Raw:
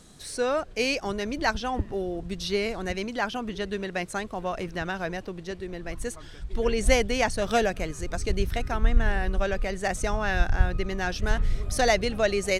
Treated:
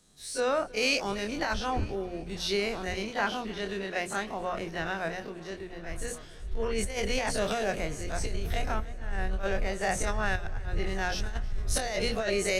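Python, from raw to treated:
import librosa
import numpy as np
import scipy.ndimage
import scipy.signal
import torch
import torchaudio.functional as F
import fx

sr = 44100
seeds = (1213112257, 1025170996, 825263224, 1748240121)

y = fx.spec_dilate(x, sr, span_ms=60)
y = fx.hum_notches(y, sr, base_hz=60, count=10)
y = fx.over_compress(y, sr, threshold_db=-22.0, ratio=-1.0)
y = fx.echo_heads(y, sr, ms=316, heads='first and third', feedback_pct=57, wet_db=-20)
y = fx.band_widen(y, sr, depth_pct=40)
y = F.gain(torch.from_numpy(y), -6.5).numpy()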